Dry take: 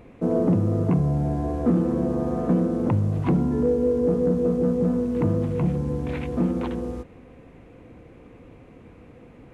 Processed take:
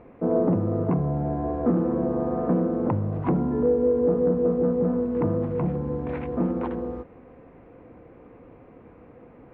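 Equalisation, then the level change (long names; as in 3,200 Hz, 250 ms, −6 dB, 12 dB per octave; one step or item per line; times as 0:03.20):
low-pass filter 1,400 Hz 12 dB per octave
low-shelf EQ 280 Hz −9.5 dB
+3.5 dB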